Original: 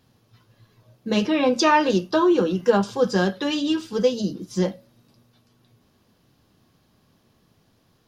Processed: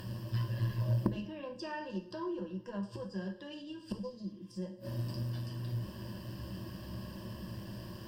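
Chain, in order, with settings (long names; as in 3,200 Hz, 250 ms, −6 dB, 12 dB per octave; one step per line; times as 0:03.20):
in parallel at −1 dB: downward compressor 10 to 1, threshold −27 dBFS, peak gain reduction 16 dB
on the sum: gate with flip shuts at −24 dBFS, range −34 dB
healed spectral selection 0:03.99–0:04.50, 860–3,700 Hz after
upward compression, threshold −54 dBFS
low-shelf EQ 470 Hz +7 dB
on a send at −3.5 dB: convolution reverb, pre-delay 3 ms
on the sum: harmonic generator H 4 −13 dB, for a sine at −19 dBFS
EQ curve with evenly spaced ripples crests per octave 1.3, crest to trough 13 dB
level +3 dB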